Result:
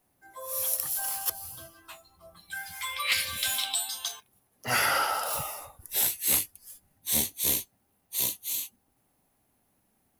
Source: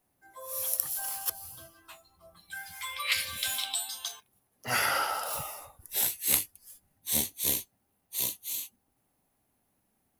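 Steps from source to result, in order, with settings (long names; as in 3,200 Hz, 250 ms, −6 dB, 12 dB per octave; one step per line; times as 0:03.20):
soft clipping −19.5 dBFS, distortion −15 dB
level +3.5 dB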